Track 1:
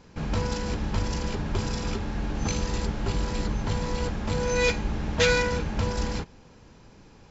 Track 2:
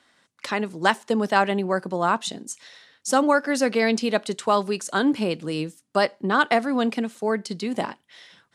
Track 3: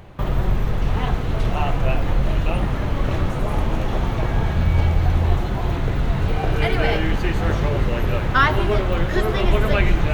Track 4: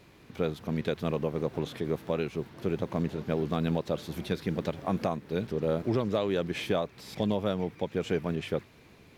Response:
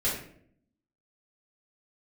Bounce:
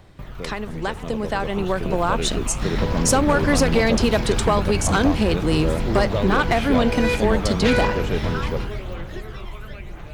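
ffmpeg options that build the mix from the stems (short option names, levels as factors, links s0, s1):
-filter_complex "[0:a]lowpass=3800,adelay=2450,volume=0.398[s0];[1:a]acompressor=threshold=0.0562:ratio=6,volume=1[s1];[2:a]aphaser=in_gain=1:out_gain=1:delay=1:decay=0.46:speed=1:type=triangular,acrossover=split=500|1900|6500[s2][s3][s4][s5];[s2]acompressor=threshold=0.0708:ratio=4[s6];[s3]acompressor=threshold=0.02:ratio=4[s7];[s4]acompressor=threshold=0.0126:ratio=4[s8];[s5]acompressor=threshold=0.00316:ratio=4[s9];[s6][s7][s8][s9]amix=inputs=4:normalize=0,volume=0.266[s10];[3:a]volume=0.531[s11];[s0][s1][s10][s11]amix=inputs=4:normalize=0,dynaudnorm=f=390:g=9:m=3.98,asoftclip=type=hard:threshold=0.316"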